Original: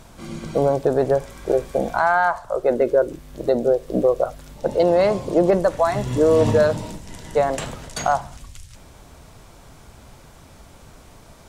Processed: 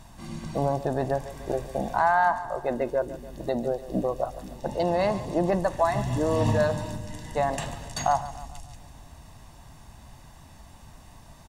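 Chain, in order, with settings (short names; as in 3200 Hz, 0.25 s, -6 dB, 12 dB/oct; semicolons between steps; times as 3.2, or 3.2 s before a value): comb 1.1 ms, depth 58%; split-band echo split 350 Hz, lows 0.481 s, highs 0.145 s, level -15 dB; gain -5.5 dB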